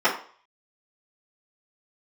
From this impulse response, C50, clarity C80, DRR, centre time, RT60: 8.0 dB, 12.5 dB, −12.0 dB, 23 ms, 0.45 s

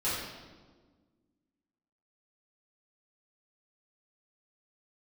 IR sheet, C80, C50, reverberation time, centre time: 2.0 dB, −0.5 dB, 1.5 s, 84 ms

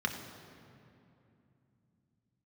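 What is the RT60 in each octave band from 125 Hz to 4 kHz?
4.6, 4.2, 2.9, 2.6, 2.3, 1.7 seconds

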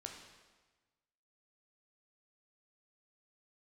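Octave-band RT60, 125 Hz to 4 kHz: 1.5, 1.4, 1.3, 1.3, 1.2, 1.1 seconds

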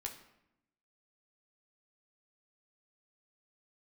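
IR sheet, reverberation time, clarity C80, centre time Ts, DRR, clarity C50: 0.85 s, 12.5 dB, 17 ms, 1.0 dB, 9.5 dB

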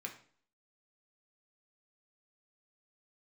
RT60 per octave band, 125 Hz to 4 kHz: 0.50, 0.55, 0.50, 0.50, 0.45, 0.45 seconds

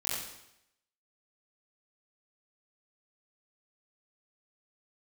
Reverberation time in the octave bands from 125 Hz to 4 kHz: 0.80, 0.80, 0.80, 0.80, 0.80, 0.80 seconds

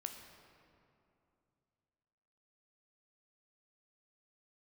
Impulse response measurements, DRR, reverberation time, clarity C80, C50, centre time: 4.5 dB, 2.7 s, 7.0 dB, 6.0 dB, 46 ms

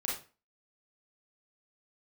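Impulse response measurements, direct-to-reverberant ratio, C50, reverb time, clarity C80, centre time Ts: −4.5 dB, 3.0 dB, 0.35 s, 10.5 dB, 40 ms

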